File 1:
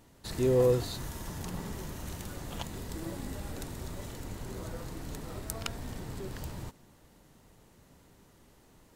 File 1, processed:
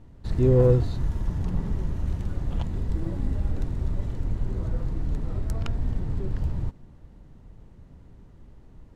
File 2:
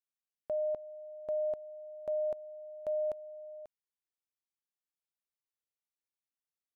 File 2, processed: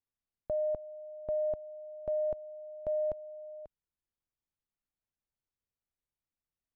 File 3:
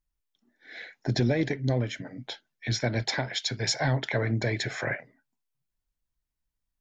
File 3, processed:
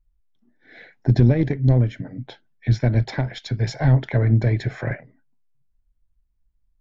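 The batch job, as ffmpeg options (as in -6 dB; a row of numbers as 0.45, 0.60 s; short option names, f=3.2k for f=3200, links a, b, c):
-af "aeval=exprs='0.316*(cos(1*acos(clip(val(0)/0.316,-1,1)))-cos(1*PI/2))+0.0501*(cos(3*acos(clip(val(0)/0.316,-1,1)))-cos(3*PI/2))':c=same,aemphasis=mode=reproduction:type=riaa,volume=5dB"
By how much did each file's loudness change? +7.5, +1.5, +8.0 LU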